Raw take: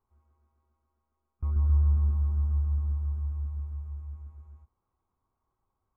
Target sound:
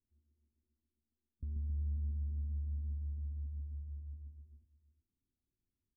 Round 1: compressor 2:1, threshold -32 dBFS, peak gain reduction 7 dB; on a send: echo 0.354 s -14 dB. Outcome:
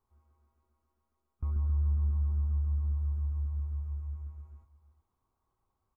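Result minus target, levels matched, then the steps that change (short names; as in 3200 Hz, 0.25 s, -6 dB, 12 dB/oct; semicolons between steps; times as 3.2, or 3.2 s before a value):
250 Hz band -4.5 dB
add after compressor: ladder low-pass 330 Hz, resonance 45%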